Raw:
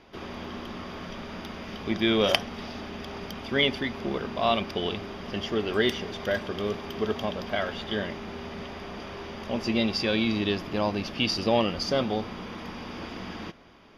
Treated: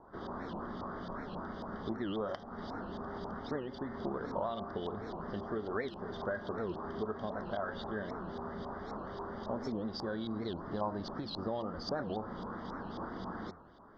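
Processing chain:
hum removal 77.83 Hz, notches 27
downward compressor 6 to 1, threshold −30 dBFS, peak gain reduction 13.5 dB
auto-filter low-pass saw up 3.7 Hz 870–3,800 Hz
Butterworth band-reject 2,500 Hz, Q 0.96
wow of a warped record 78 rpm, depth 250 cents
level −4 dB

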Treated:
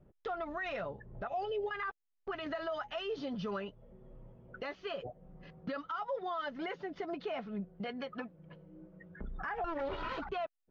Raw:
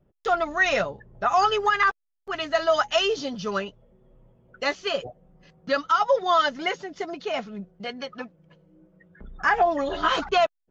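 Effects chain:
0:09.64–0:10.18: lower of the sound and its delayed copy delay 2.1 ms
downward compressor 2 to 1, threshold −41 dBFS, peak gain reduction 13.5 dB
0:01.27–0:01.71: drawn EQ curve 360 Hz 0 dB, 580 Hz +13 dB, 1,200 Hz −25 dB, 2,800 Hz 0 dB, 6,400 Hz −7 dB
brickwall limiter −31 dBFS, peak gain reduction 8.5 dB
high-frequency loss of the air 290 metres
0:02.46–0:02.96: multiband upward and downward compressor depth 70%
level +2.5 dB

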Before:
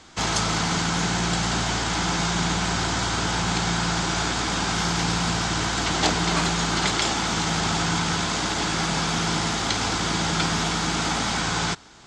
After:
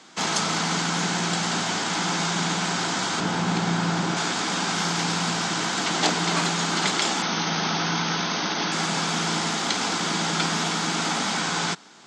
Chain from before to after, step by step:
Chebyshev high-pass filter 180 Hz, order 3
0:03.20–0:04.17: spectral tilt −2 dB per octave
0:07.22–0:08.72: linear-phase brick-wall low-pass 6,500 Hz

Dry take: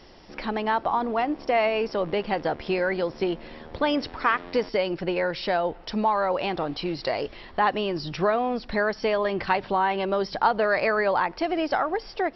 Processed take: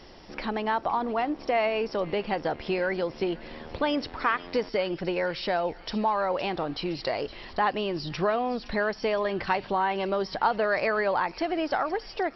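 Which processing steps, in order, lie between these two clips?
in parallel at −2 dB: downward compressor, threshold −35 dBFS, peak gain reduction 17.5 dB
on the sum: delay with a high-pass on its return 515 ms, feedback 58%, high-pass 2,800 Hz, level −13 dB
level −4 dB

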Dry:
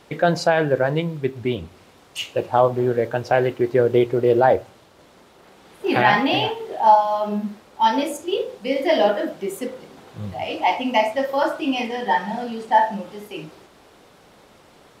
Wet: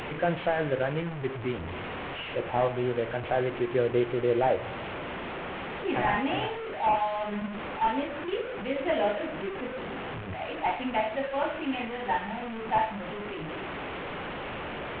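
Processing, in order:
linear delta modulator 16 kbit/s, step −21 dBFS
hum removal 105.7 Hz, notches 30
level −8.5 dB

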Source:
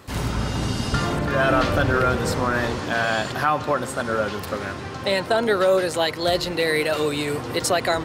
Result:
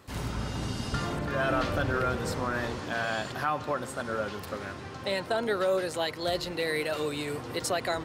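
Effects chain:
0:02.93–0:03.70: surface crackle 80 per second −49 dBFS
level −8.5 dB

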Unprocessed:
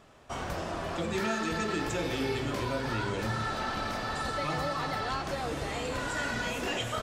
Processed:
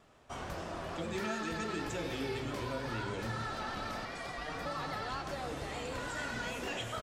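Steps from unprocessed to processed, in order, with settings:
far-end echo of a speakerphone 100 ms, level −12 dB
pitch vibrato 6.8 Hz 41 cents
0:04.05–0:04.66: ring modulation 610 Hz
level −6 dB

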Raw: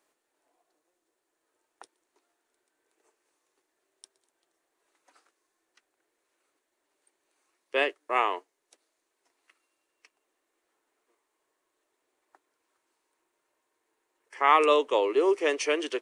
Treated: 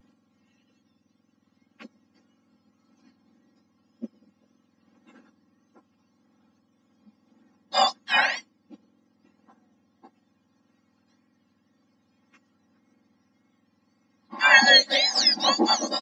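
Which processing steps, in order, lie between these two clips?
frequency axis turned over on the octave scale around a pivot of 1,400 Hz
pitch vibrato 1.8 Hz 76 cents
comb filter 3.7 ms, depth 88%
level +5.5 dB

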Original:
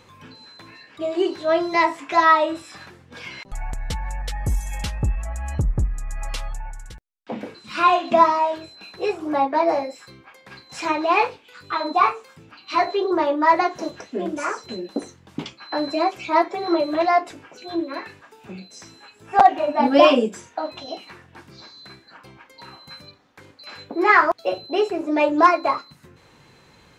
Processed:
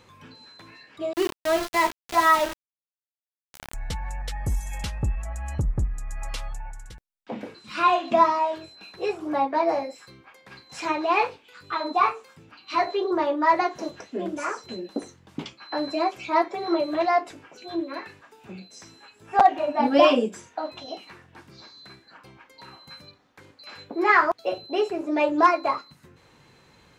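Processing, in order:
0:01.13–0:03.74: centre clipping without the shift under −22 dBFS
level −3.5 dB

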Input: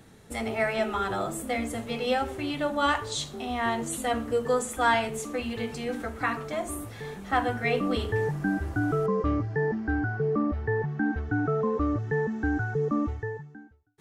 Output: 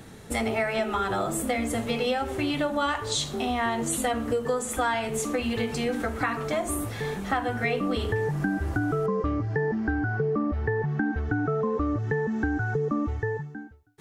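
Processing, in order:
downward compressor, threshold −31 dBFS, peak gain reduction 12 dB
level +7.5 dB

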